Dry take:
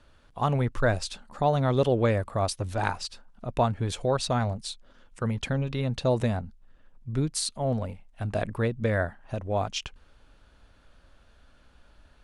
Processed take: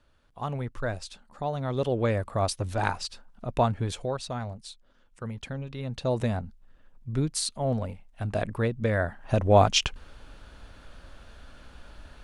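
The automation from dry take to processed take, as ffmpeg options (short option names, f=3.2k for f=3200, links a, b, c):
-af "volume=17.5dB,afade=t=in:st=1.6:d=0.84:silence=0.421697,afade=t=out:st=3.76:d=0.43:silence=0.398107,afade=t=in:st=5.75:d=0.66:silence=0.421697,afade=t=in:st=9.02:d=0.4:silence=0.334965"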